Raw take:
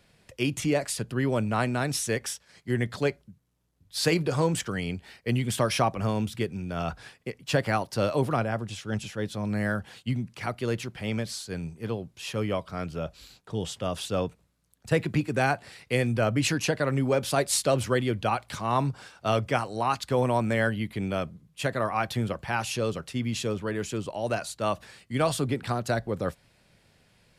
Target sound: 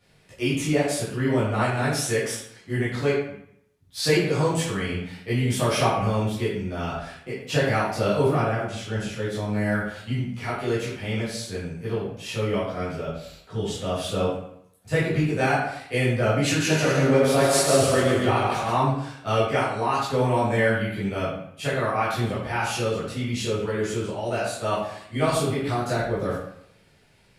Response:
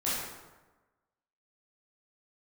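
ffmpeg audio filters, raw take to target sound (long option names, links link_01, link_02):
-filter_complex "[0:a]asettb=1/sr,asplit=3[link_01][link_02][link_03];[link_01]atrim=end=16.464[link_04];[link_02]atrim=start=16.46:end=18.7,asetpts=PTS-STARTPTS,afade=type=in:duration=0.004:curve=qsin,afade=type=out:start_time=2.236:duration=0.004:curve=qsin,aecho=1:1:140|238|306.6|354.6|388.2:0.631|0.398|0.251|0.158|0.1,atrim=end_sample=98784[link_05];[link_03]atrim=start=18.696[link_06];[link_04][link_05]acrossfade=duration=0.004:curve1=hsin:curve2=qsin[link_07];[link_07][link_06]acrossfade=duration=0.004:curve1=qsin:curve2=hsin[link_08];[1:a]atrim=start_sample=2205,asetrate=74970,aresample=44100[link_09];[link_08][link_09]afir=irnorm=-1:irlink=0"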